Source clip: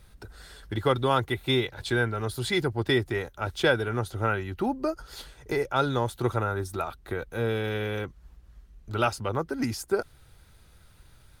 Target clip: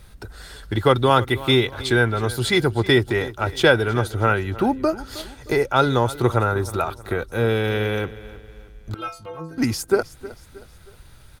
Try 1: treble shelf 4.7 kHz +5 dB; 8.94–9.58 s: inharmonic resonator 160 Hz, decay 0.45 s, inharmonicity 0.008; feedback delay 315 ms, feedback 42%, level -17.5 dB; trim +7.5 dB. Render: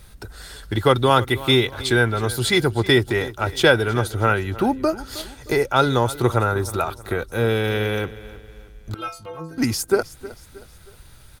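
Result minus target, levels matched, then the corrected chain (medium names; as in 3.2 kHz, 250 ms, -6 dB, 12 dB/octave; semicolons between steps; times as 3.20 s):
8 kHz band +3.5 dB
8.94–9.58 s: inharmonic resonator 160 Hz, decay 0.45 s, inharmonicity 0.008; feedback delay 315 ms, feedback 42%, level -17.5 dB; trim +7.5 dB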